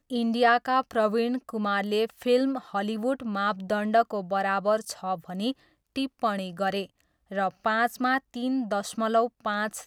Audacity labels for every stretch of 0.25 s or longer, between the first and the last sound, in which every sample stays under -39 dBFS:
5.520000	5.960000	silence
6.850000	7.310000	silence